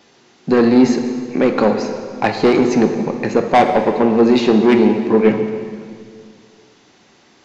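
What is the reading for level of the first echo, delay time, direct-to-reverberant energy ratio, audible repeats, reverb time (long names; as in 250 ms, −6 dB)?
no echo audible, no echo audible, 5.0 dB, no echo audible, 2.1 s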